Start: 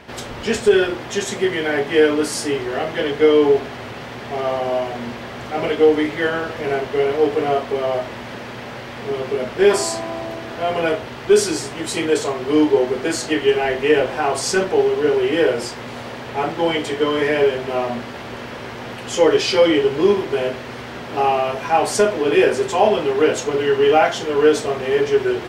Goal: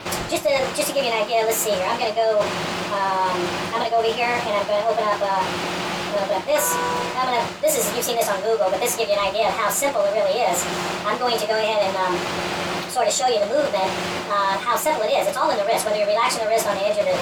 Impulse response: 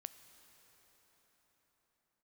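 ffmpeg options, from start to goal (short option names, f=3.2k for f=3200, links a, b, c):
-af "adynamicequalizer=threshold=0.00355:dfrequency=5000:dqfactor=7.6:tfrequency=5000:tqfactor=7.6:attack=5:release=100:ratio=0.375:range=3.5:mode=boostabove:tftype=bell,areverse,acompressor=threshold=-26dB:ratio=4,areverse,asetrate=65268,aresample=44100,volume=7dB"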